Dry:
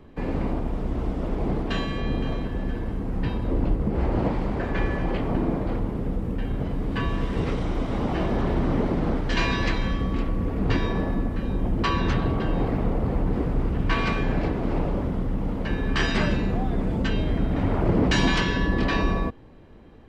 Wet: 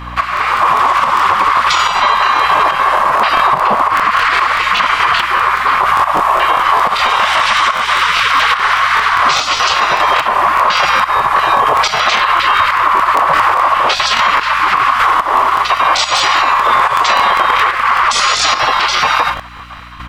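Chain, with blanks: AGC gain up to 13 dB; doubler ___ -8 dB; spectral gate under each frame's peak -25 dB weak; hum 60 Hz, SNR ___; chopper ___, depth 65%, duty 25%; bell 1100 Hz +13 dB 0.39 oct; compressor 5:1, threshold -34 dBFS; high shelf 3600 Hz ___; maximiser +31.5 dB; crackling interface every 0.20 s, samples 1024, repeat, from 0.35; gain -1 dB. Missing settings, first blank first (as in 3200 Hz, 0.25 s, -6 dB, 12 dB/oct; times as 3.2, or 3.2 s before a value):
41 ms, 25 dB, 1.2 Hz, -4 dB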